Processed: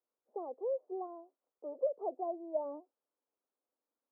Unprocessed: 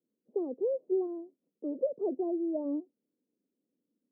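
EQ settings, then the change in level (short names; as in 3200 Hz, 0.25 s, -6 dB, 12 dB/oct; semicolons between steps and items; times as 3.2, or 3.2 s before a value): Butterworth band-pass 970 Hz, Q 1.5; +8.5 dB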